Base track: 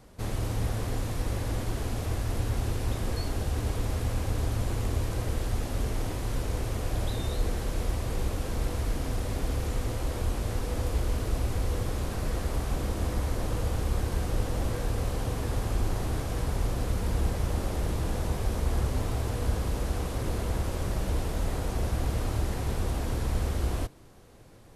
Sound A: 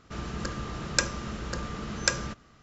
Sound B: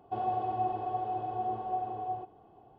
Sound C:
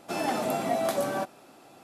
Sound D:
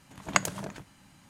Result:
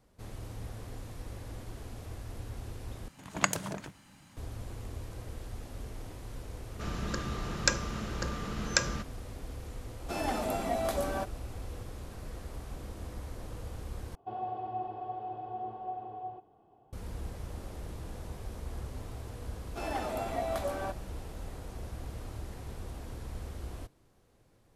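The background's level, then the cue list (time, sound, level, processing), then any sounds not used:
base track -12.5 dB
3.08 replace with D + limiter -5.5 dBFS
6.69 add A -1.5 dB
10 add C -4.5 dB
14.15 replace with B -5.5 dB
19.67 add C -6 dB + tone controls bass -8 dB, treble -5 dB

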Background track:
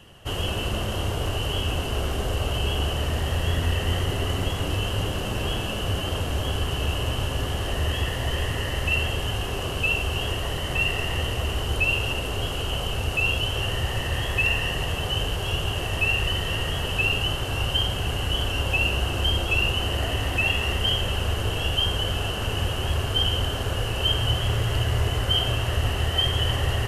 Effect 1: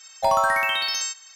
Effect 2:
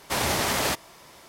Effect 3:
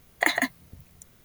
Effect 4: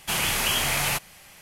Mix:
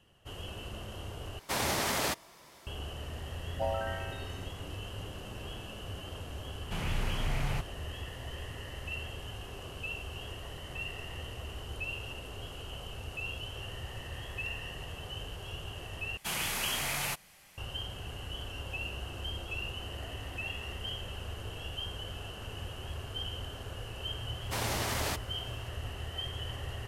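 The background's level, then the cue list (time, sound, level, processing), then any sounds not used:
background track -15.5 dB
1.39 replace with 2 -6 dB
3.37 add 1 -4.5 dB + running mean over 41 samples
6.63 add 4 -12 dB + RIAA curve playback
16.17 replace with 4 -9 dB
24.41 add 2 -9 dB
not used: 3

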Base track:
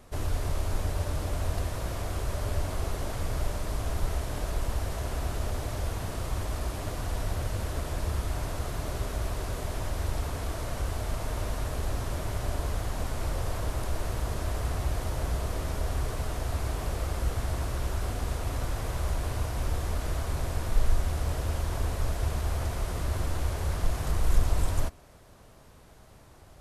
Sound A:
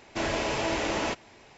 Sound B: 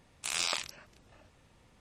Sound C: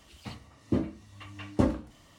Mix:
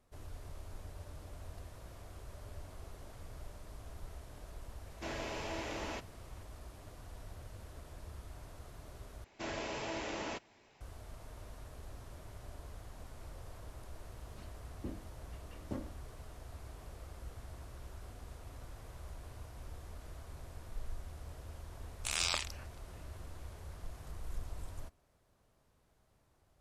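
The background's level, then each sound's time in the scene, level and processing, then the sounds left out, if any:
base track -18.5 dB
4.86 add A -12.5 dB
9.24 replace with A -11.5 dB
14.12 add C -17 dB
21.81 add B -2 dB

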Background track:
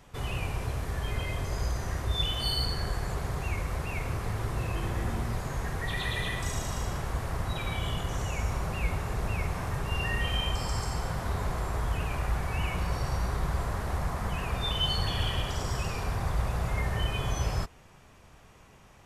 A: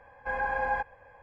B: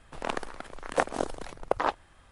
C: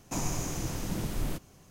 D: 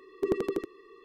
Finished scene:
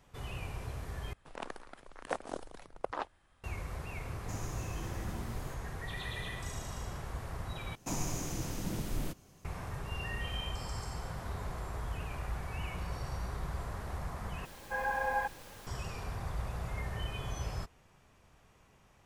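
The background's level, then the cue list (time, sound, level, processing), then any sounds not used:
background track -8.5 dB
1.13 replace with B -10.5 dB
4.17 add C -12.5 dB
7.75 replace with C -3.5 dB
14.45 replace with A -3.5 dB + added noise pink -48 dBFS
not used: D

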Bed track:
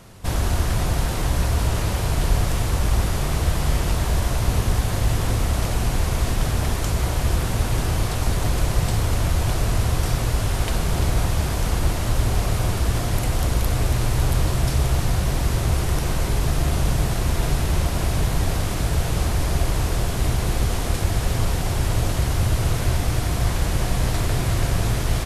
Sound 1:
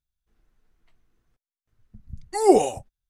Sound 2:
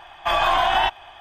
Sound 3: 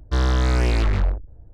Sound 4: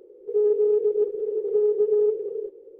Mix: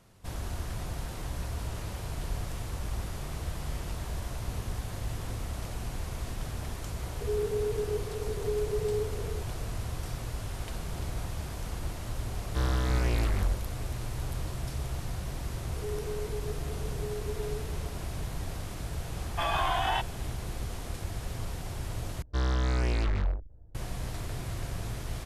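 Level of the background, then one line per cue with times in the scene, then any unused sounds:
bed track -14.5 dB
6.93 add 4 -10.5 dB
12.43 add 3 -8.5 dB
15.48 add 4 -17.5 dB
19.12 add 2 -10 dB
22.22 replace with 3 -8.5 dB
not used: 1

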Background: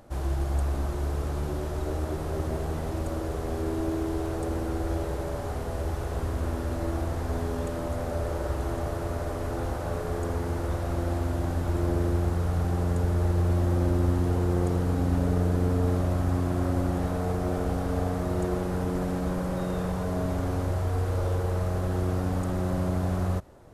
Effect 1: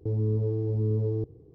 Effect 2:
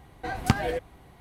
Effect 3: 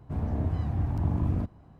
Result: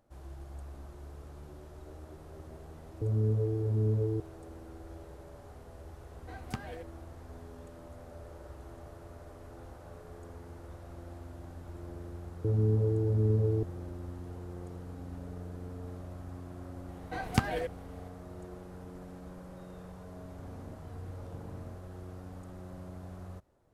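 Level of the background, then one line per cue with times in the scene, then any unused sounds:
background -18 dB
2.96 add 1 -1.5 dB + per-bin expansion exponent 1.5
6.04 add 2 -15.5 dB
12.39 add 1 -0.5 dB
16.88 add 2 -5 dB
20.29 add 3 -16 dB + HPF 130 Hz

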